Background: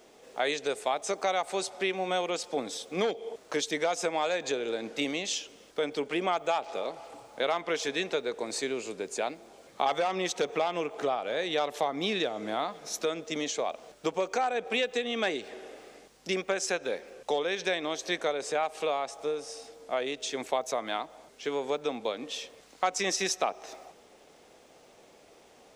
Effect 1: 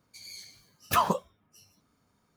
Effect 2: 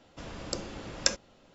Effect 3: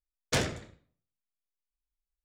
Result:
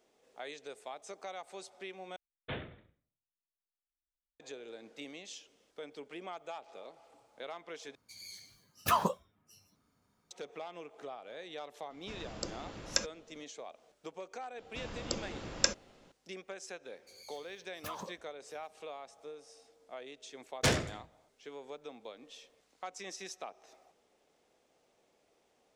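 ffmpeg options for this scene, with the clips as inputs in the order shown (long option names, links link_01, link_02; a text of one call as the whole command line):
ffmpeg -i bed.wav -i cue0.wav -i cue1.wav -i cue2.wav -filter_complex "[3:a]asplit=2[link_01][link_02];[1:a]asplit=2[link_03][link_04];[2:a]asplit=2[link_05][link_06];[0:a]volume=-15.5dB[link_07];[link_01]aresample=8000,aresample=44100[link_08];[link_04]acompressor=threshold=-29dB:ratio=6:attack=3.2:release=140:knee=1:detection=peak[link_09];[link_07]asplit=3[link_10][link_11][link_12];[link_10]atrim=end=2.164[link_13];[link_08]atrim=end=2.24,asetpts=PTS-STARTPTS,volume=-11.5dB[link_14];[link_11]atrim=start=4.396:end=7.954[link_15];[link_03]atrim=end=2.36,asetpts=PTS-STARTPTS,volume=-4dB[link_16];[link_12]atrim=start=10.306[link_17];[link_05]atrim=end=1.54,asetpts=PTS-STARTPTS,volume=-5dB,afade=type=in:duration=0.004:curve=hsin,afade=type=out:start_time=1.536:duration=0.004:curve=hsin,adelay=11900[link_18];[link_06]atrim=end=1.54,asetpts=PTS-STARTPTS,volume=-2dB,afade=type=in:duration=0.004:curve=hsin,afade=type=out:start_time=1.536:duration=0.004:curve=hsin,adelay=14580[link_19];[link_09]atrim=end=2.36,asetpts=PTS-STARTPTS,volume=-10dB,afade=type=in:duration=0.004:curve=hsin,afade=type=out:start_time=2.356:duration=0.004:curve=hsin,adelay=16930[link_20];[link_02]atrim=end=2.24,asetpts=PTS-STARTPTS,afade=type=in:duration=0.004:curve=hsin,afade=type=out:start_time=2.236:duration=0.004:curve=hsin,adelay=20310[link_21];[link_13][link_14]acrossfade=duration=0.004:curve1=hsin:curve2=hsin[link_22];[link_22][link_15]acrossfade=duration=0.004:curve1=hsin:curve2=hsin[link_23];[link_23][link_16]acrossfade=duration=0.004:curve1=hsin:curve2=hsin[link_24];[link_24][link_17]acrossfade=duration=0.004:curve1=hsin:curve2=hsin[link_25];[link_25][link_18][link_19][link_20][link_21]amix=inputs=5:normalize=0" out.wav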